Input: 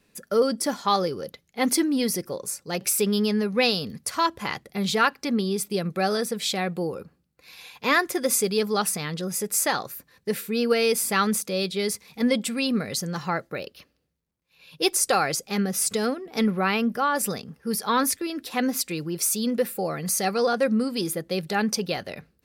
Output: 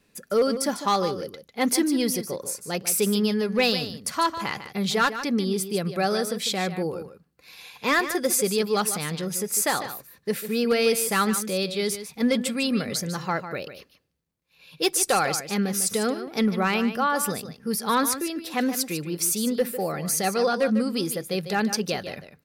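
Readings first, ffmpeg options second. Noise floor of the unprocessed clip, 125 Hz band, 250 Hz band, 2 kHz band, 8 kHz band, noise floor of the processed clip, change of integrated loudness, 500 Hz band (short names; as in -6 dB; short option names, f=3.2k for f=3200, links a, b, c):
-69 dBFS, +0.5 dB, +0.5 dB, 0.0 dB, +0.5 dB, -63 dBFS, 0.0 dB, 0.0 dB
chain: -filter_complex "[0:a]asoftclip=type=hard:threshold=-14.5dB,asplit=2[a][b];[b]aecho=0:1:149:0.282[c];[a][c]amix=inputs=2:normalize=0"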